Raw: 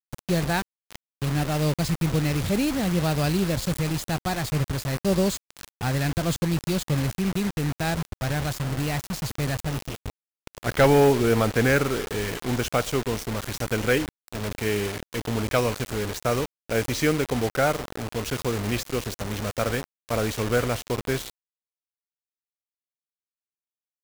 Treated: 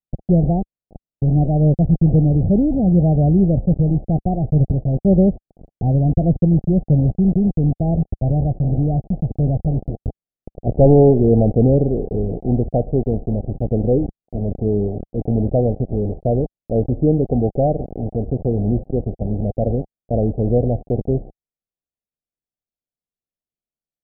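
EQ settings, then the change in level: steep low-pass 770 Hz 96 dB/octave; bass shelf 63 Hz +11.5 dB; peaking EQ 180 Hz +4.5 dB 1.2 oct; +5.0 dB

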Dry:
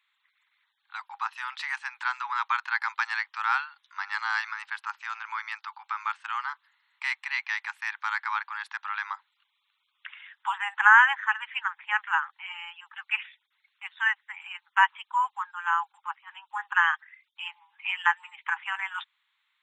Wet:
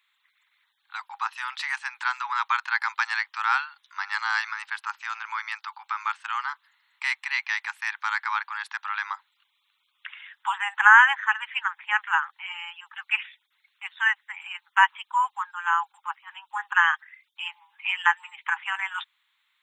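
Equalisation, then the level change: treble shelf 5.2 kHz +6.5 dB; +2.0 dB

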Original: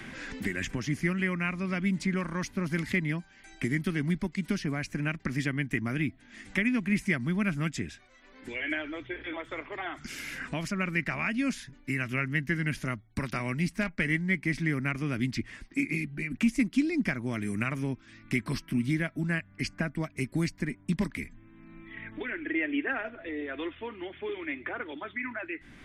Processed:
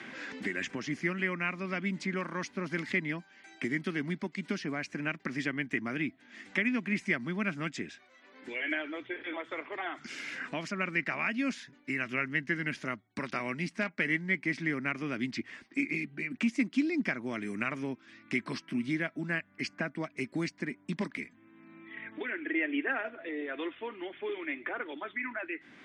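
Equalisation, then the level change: high-pass 260 Hz 12 dB/octave; low-pass 8.7 kHz 12 dB/octave; distance through air 58 m; 0.0 dB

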